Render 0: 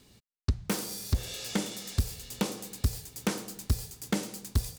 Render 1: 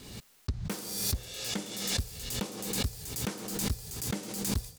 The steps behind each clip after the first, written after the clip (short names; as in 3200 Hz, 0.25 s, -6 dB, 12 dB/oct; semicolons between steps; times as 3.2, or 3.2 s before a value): backwards sustainer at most 47 dB/s; gain -6 dB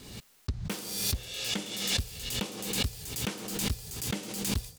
dynamic EQ 2900 Hz, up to +7 dB, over -53 dBFS, Q 1.6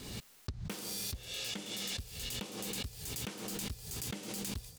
compressor, threshold -39 dBFS, peak gain reduction 13.5 dB; gain +1.5 dB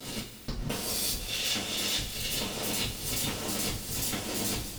cycle switcher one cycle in 2, muted; two-slope reverb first 0.29 s, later 3.6 s, from -20 dB, DRR -9.5 dB; gain +2 dB